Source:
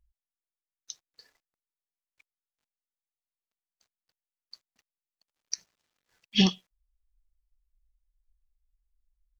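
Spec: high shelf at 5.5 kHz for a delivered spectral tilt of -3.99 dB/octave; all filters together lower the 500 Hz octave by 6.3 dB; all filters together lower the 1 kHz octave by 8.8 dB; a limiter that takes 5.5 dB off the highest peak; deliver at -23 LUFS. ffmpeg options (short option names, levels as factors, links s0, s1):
-af "equalizer=f=500:t=o:g=-8,equalizer=f=1000:t=o:g=-8.5,highshelf=f=5500:g=-8.5,volume=3.98,alimiter=limit=0.562:level=0:latency=1"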